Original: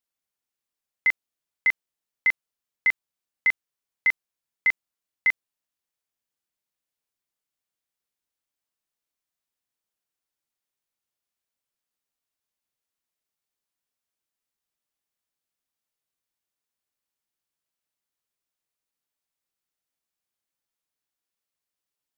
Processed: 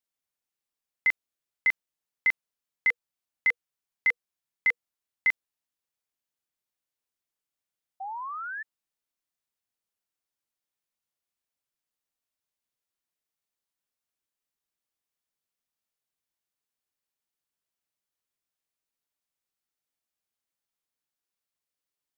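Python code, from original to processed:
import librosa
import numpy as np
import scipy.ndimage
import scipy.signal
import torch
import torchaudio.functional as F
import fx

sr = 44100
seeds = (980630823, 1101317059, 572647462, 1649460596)

y = fx.notch(x, sr, hz=480.0, q=15.0, at=(2.89, 5.29))
y = fx.spec_paint(y, sr, seeds[0], shape='rise', start_s=8.0, length_s=0.63, low_hz=750.0, high_hz=1800.0, level_db=-33.0)
y = y * 10.0 ** (-2.5 / 20.0)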